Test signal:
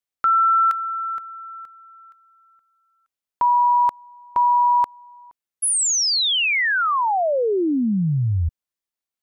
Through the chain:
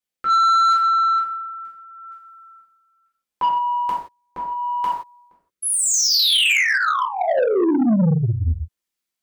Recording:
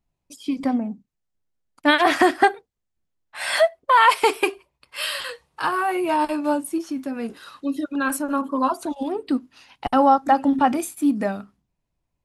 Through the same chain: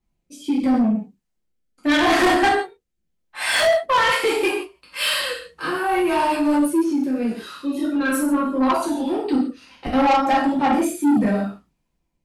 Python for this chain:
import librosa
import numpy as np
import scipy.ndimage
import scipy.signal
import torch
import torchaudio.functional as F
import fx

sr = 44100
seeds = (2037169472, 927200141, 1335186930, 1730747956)

y = fx.rev_gated(x, sr, seeds[0], gate_ms=200, shape='falling', drr_db=-7.0)
y = fx.rotary(y, sr, hz=0.75)
y = 10.0 ** (-13.0 / 20.0) * np.tanh(y / 10.0 ** (-13.0 / 20.0))